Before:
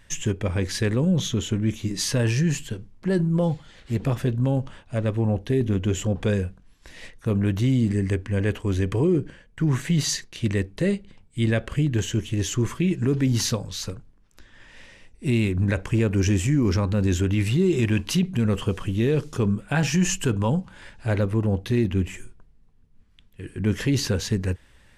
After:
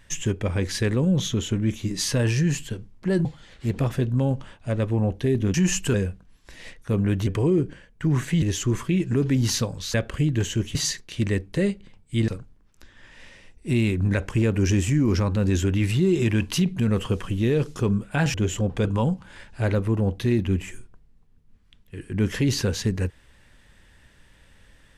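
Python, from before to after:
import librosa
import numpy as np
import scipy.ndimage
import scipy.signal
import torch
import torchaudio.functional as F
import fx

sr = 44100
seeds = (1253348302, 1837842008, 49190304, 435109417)

y = fx.edit(x, sr, fx.cut(start_s=3.25, length_s=0.26),
    fx.swap(start_s=5.8, length_s=0.51, other_s=19.91, other_length_s=0.4),
    fx.cut(start_s=7.64, length_s=1.2),
    fx.swap(start_s=9.99, length_s=1.53, other_s=12.33, other_length_s=1.52), tone=tone)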